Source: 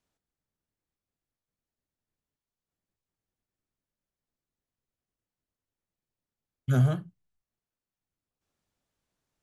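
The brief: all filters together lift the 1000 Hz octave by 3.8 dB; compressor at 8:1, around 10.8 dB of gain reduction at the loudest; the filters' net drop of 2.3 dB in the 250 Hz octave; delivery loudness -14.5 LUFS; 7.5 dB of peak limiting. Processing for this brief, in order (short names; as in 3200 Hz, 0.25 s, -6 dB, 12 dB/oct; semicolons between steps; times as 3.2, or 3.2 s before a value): bell 250 Hz -4.5 dB; bell 1000 Hz +6 dB; compressor 8:1, threshold -30 dBFS; gain +28.5 dB; limiter -3 dBFS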